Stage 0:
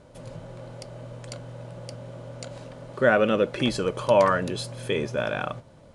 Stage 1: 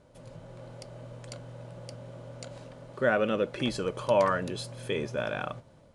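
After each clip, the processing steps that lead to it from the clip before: level rider gain up to 3 dB; trim -7.5 dB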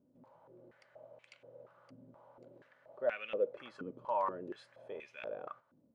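step-sequenced band-pass 4.2 Hz 260–2400 Hz; trim -2 dB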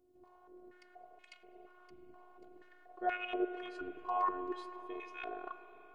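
robot voice 361 Hz; reverberation RT60 5.4 s, pre-delay 36 ms, DRR 10 dB; trim +4 dB

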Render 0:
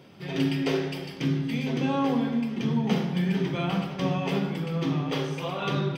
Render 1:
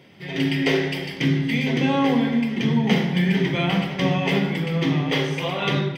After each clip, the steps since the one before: graphic EQ with 31 bands 1.25 kHz -5 dB, 2 kHz +11 dB, 3.15 kHz +4 dB; level rider gain up to 5.5 dB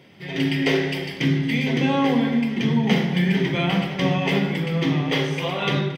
delay 225 ms -20 dB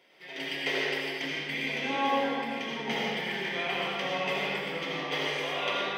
high-pass 520 Hz 12 dB/octave; algorithmic reverb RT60 1.8 s, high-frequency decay 0.7×, pre-delay 40 ms, DRR -3.5 dB; trim -8.5 dB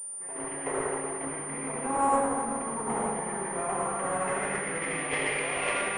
square wave that keeps the level; low-pass sweep 1.1 kHz -> 2.3 kHz, 3.85–5.09 s; class-D stage that switches slowly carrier 9.2 kHz; trim -5 dB

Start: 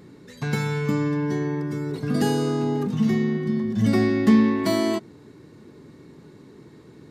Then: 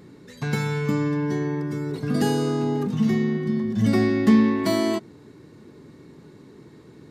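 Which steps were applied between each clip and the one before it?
no audible change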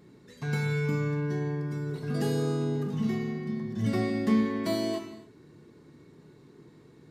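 gated-style reverb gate 320 ms falling, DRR 3.5 dB; trim -8.5 dB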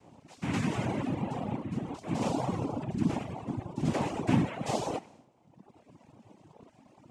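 noise-vocoded speech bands 4; reverb removal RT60 1.3 s

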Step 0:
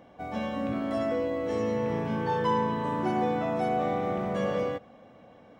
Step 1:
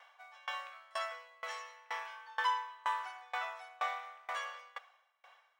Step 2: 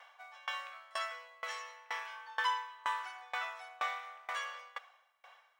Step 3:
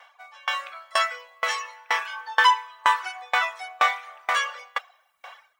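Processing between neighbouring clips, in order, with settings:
inverse Chebyshev high-pass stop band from 230 Hz, stop band 70 dB; sawtooth tremolo in dB decaying 2.1 Hz, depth 28 dB; trim +7 dB
dynamic bell 700 Hz, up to -6 dB, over -49 dBFS, Q 1.1; trim +2.5 dB
reverb removal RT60 0.67 s; level rider gain up to 10.5 dB; trim +5.5 dB

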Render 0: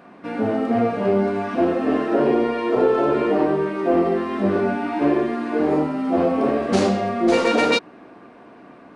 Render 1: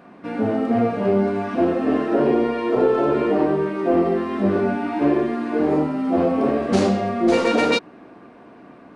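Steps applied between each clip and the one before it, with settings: bass shelf 320 Hz +4 dB; trim -1.5 dB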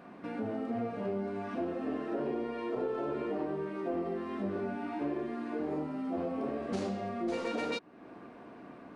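compression 2:1, threshold -36 dBFS, peak gain reduction 13 dB; trim -5 dB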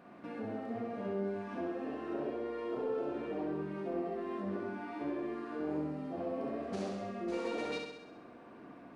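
flutter echo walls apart 11.3 m, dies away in 0.91 s; trim -5 dB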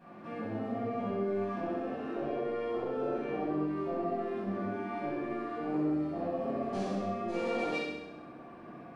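simulated room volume 850 m³, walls furnished, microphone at 8.7 m; trim -7.5 dB

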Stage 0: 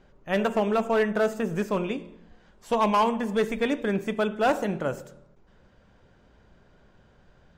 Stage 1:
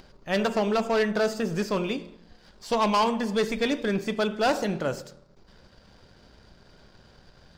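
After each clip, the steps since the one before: peaking EQ 4.7 kHz +15 dB 0.66 oct; upward compressor, threshold -44 dBFS; waveshaping leveller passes 1; trim -3 dB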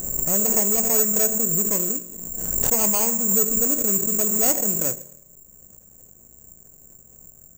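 median filter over 41 samples; careless resampling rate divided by 6×, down filtered, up zero stuff; swell ahead of each attack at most 33 dB/s; trim -2.5 dB

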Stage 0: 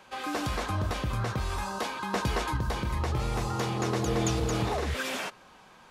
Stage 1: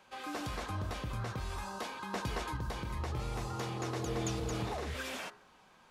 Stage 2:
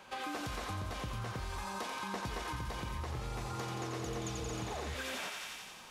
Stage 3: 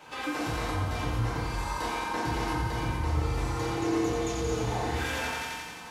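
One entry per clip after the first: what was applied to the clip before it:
de-hum 69.06 Hz, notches 28; trim -7.5 dB
thinning echo 88 ms, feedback 74%, high-pass 1.1 kHz, level -4 dB; compression 4:1, threshold -45 dBFS, peak gain reduction 12 dB; trim +7 dB
FDN reverb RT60 1.1 s, low-frequency decay 1.35×, high-frequency decay 0.4×, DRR -7.5 dB

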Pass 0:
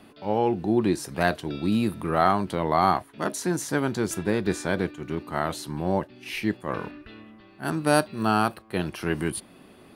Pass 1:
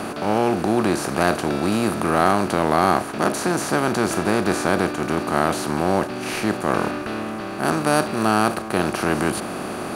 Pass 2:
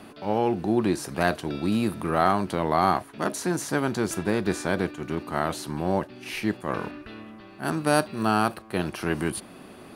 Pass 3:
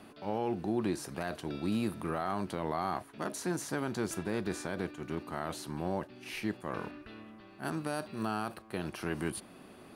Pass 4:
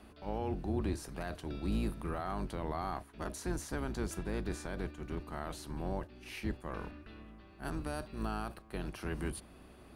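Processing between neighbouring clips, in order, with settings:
spectral levelling over time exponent 0.4; trim -1 dB
expander on every frequency bin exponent 2
peak limiter -14.5 dBFS, peak gain reduction 8.5 dB; trim -7.5 dB
octave divider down 2 oct, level +2 dB; trim -4.5 dB

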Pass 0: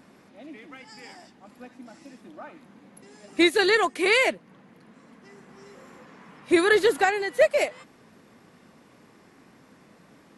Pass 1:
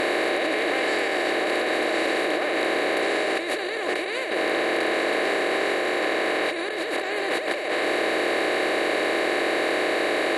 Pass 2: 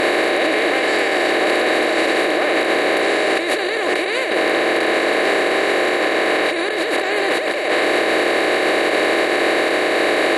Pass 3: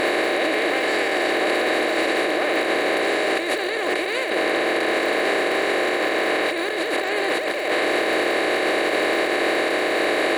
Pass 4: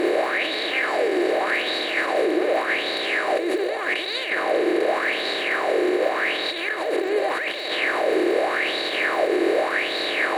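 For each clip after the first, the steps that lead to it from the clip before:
spectral levelling over time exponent 0.2; bass shelf 65 Hz -7.5 dB; compressor with a negative ratio -17 dBFS, ratio -1; trim -7.5 dB
peak limiter -15.5 dBFS, peak gain reduction 6.5 dB; trim +8 dB
crackle 220 per s -26 dBFS; trim -4 dB
sweeping bell 0.85 Hz 350–4100 Hz +15 dB; trim -7.5 dB

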